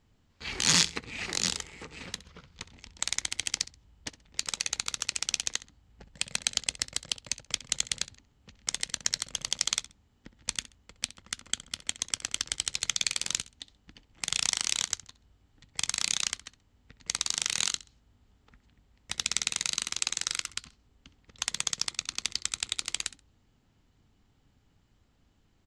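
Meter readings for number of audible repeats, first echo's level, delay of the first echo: 2, -17.5 dB, 65 ms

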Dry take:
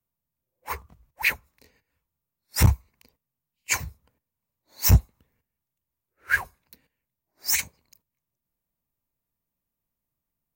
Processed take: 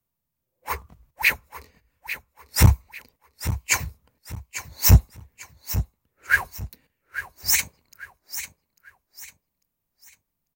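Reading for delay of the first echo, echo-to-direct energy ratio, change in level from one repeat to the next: 0.846 s, -11.5 dB, -9.5 dB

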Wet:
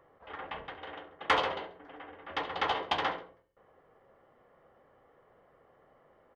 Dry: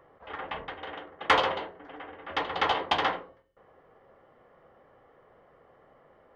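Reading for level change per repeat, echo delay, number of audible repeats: -7.0 dB, 68 ms, 2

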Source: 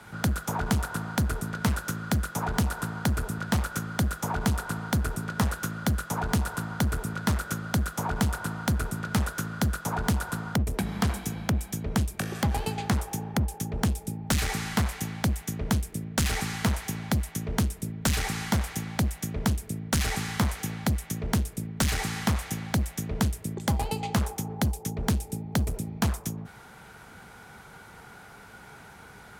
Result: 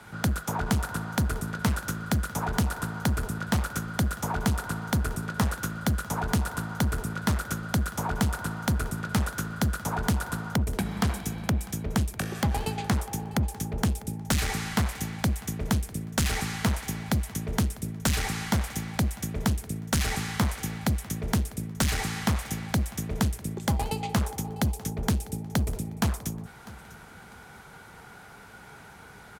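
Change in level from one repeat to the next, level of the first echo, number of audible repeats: -11.0 dB, -20.0 dB, 2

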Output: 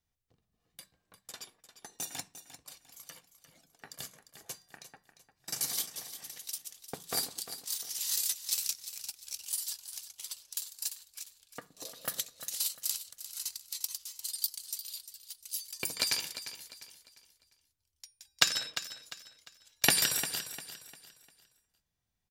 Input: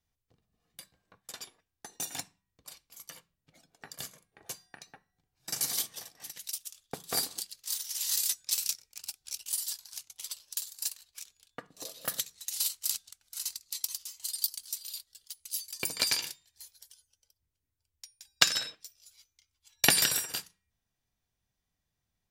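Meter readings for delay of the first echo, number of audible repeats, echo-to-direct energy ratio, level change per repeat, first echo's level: 0.35 s, 3, -11.5 dB, -9.0 dB, -12.0 dB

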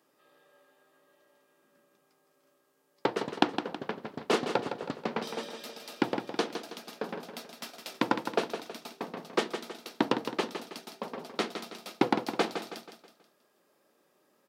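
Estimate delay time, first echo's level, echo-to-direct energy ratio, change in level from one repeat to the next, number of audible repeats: 0.161 s, -8.5 dB, -7.5 dB, -7.5 dB, 4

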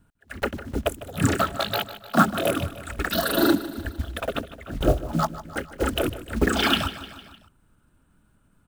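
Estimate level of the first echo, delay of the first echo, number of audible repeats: -15.0 dB, 0.152 s, 4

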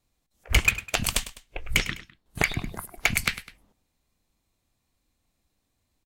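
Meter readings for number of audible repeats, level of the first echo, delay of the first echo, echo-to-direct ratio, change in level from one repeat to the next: 2, -15.0 dB, 0.102 s, -14.0 dB, -7.0 dB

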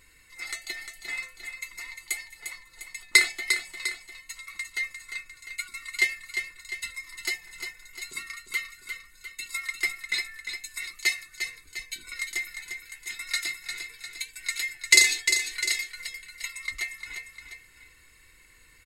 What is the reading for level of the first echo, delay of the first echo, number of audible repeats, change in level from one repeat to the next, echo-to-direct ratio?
-7.5 dB, 0.351 s, 2, -5.0 dB, -6.5 dB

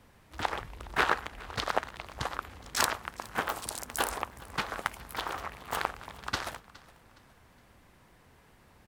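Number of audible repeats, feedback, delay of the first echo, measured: 2, 37%, 0.415 s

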